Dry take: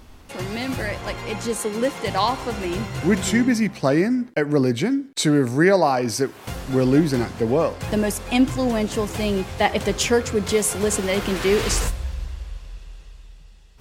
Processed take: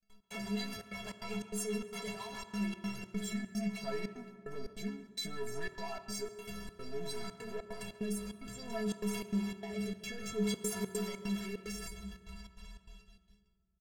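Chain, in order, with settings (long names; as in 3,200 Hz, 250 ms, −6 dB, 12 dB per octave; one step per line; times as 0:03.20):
downward expander −35 dBFS
parametric band 350 Hz −6.5 dB 1.1 octaves
brickwall limiter −15 dBFS, peak gain reduction 10.5 dB
leveller curve on the samples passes 3
downward compressor, threshold −24 dBFS, peak gain reduction 6.5 dB
rotating-speaker cabinet horn 8 Hz, later 0.6 Hz, at 0:02.11
stiff-string resonator 200 Hz, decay 0.54 s, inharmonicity 0.03
gate pattern "xx.xxxxx.xx.xx.x" 148 BPM −60 dB
far-end echo of a speakerphone 140 ms, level −14 dB
on a send at −11.5 dB: convolution reverb RT60 2.3 s, pre-delay 3 ms
on the sum: level +3.5 dB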